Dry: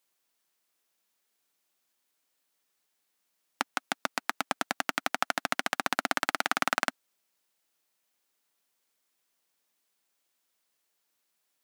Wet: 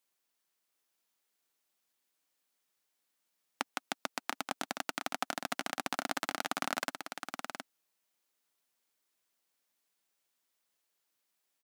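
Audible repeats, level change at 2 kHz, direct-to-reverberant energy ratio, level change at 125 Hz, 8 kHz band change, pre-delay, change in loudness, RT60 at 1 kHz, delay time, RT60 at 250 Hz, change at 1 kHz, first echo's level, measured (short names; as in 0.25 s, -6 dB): 1, -8.0 dB, none, -4.0 dB, -4.0 dB, none, -7.0 dB, none, 0.717 s, none, -6.0 dB, -6.5 dB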